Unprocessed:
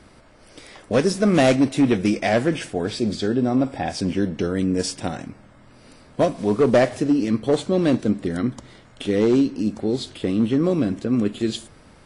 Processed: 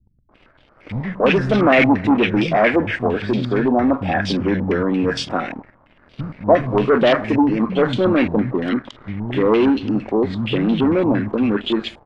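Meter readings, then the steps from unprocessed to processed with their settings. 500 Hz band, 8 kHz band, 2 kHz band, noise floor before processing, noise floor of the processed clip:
+3.5 dB, can't be measured, +8.5 dB, −50 dBFS, −55 dBFS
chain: three-band delay without the direct sound lows, mids, highs 290/320 ms, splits 180/1,200 Hz
leveller curve on the samples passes 2
low-pass on a step sequencer 8.7 Hz 890–3,300 Hz
level −2 dB

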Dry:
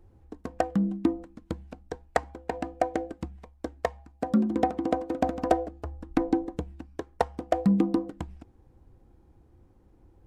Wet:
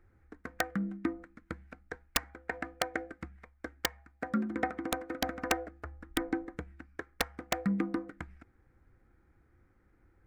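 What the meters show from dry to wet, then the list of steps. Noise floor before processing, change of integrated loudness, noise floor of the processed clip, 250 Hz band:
−60 dBFS, −7.0 dB, −68 dBFS, −8.5 dB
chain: flat-topped bell 1,700 Hz +15 dB 1.1 octaves
wrap-around overflow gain 8 dB
level −8.5 dB

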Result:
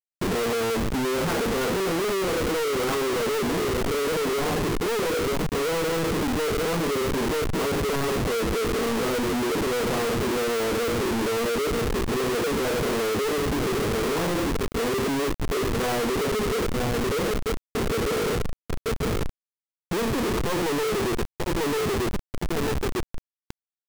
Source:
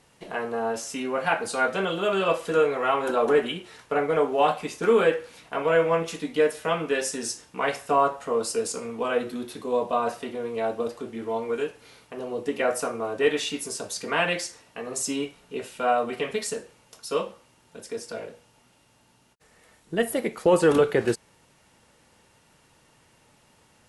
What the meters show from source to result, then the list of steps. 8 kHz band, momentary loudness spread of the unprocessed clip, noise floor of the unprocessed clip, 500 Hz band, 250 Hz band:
+1.5 dB, 13 LU, −61 dBFS, 0.0 dB, +5.0 dB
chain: wavefolder on the positive side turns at −18 dBFS
low shelf with overshoot 510 Hz +6.5 dB, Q 3
on a send: repeating echo 940 ms, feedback 20%, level −18 dB
on the sum: low-pass that shuts in the quiet parts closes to 590 Hz, open at −11 dBFS
automatic gain control gain up to 8 dB
inverse Chebyshev low-pass filter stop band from 7,400 Hz, stop band 80 dB
downward compressor 6 to 1, threshold −19 dBFS, peak gain reduction 12.5 dB
comparator with hysteresis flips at −38.5 dBFS
log-companded quantiser 2 bits

